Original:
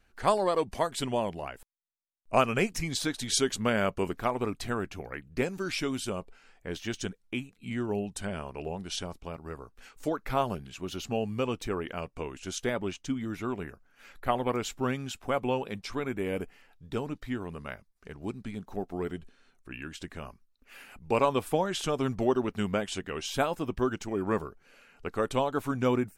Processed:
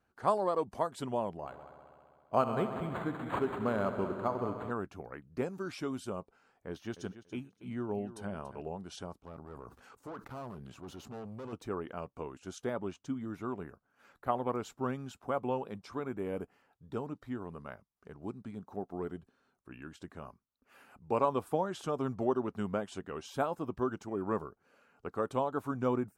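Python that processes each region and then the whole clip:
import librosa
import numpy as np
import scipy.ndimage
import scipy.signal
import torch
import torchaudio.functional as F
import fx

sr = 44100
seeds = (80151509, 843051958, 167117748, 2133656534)

y = fx.chain(x, sr, fx.echo_heads(ms=66, heads='all three', feedback_pct=68, wet_db=-14.5),
    fx.resample_linear(factor=8), at=(1.37, 4.71))
y = fx.chain(y, sr, fx.notch(hz=7500.0, q=5.0),
    fx.echo_feedback(ms=284, feedback_pct=19, wet_db=-13.5), at=(6.68, 8.61))
y = fx.chain(y, sr, fx.tube_stage(drive_db=36.0, bias=0.55),
    fx.sustainer(db_per_s=21.0), at=(9.2, 11.53))
y = scipy.signal.sosfilt(scipy.signal.butter(2, 82.0, 'highpass', fs=sr, output='sos'), y)
y = fx.high_shelf_res(y, sr, hz=1600.0, db=-7.5, q=1.5)
y = y * 10.0 ** (-5.0 / 20.0)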